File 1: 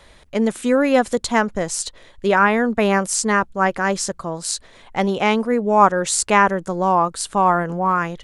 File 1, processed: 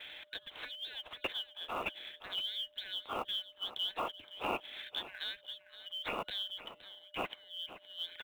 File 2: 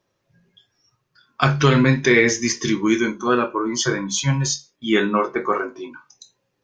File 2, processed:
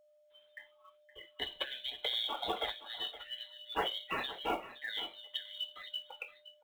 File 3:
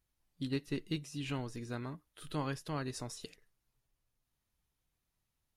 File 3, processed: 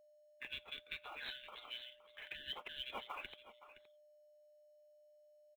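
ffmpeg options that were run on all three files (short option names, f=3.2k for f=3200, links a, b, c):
-filter_complex "[0:a]afftfilt=real='real(if(lt(b,272),68*(eq(floor(b/68),0)*3+eq(floor(b/68),1)*2+eq(floor(b/68),2)*1+eq(floor(b/68),3)*0)+mod(b,68),b),0)':imag='imag(if(lt(b,272),68*(eq(floor(b/68),0)*3+eq(floor(b/68),1)*2+eq(floor(b/68),2)*1+eq(floor(b/68),3)*0)+mod(b,68),b),0)':win_size=2048:overlap=0.75,equalizer=f=140:w=0.61:g=-11,acompressor=threshold=-26dB:ratio=8,agate=range=-33dB:threshold=-58dB:ratio=3:detection=peak,acrossover=split=160|1000|3000[a][b][c][d];[a]acompressor=threshold=-58dB:ratio=4[e];[c]acompressor=threshold=-53dB:ratio=4[f];[d]acompressor=threshold=-33dB:ratio=4[g];[e][b][f][g]amix=inputs=4:normalize=0,aresample=8000,aresample=44100,aeval=exprs='val(0)+0.000282*sin(2*PI*600*n/s)':c=same,bandreject=f=1.9k:w=25,acrusher=bits=6:mode=log:mix=0:aa=0.000001,lowshelf=f=61:g=-7.5,aecho=1:1:518:0.188,volume=6.5dB"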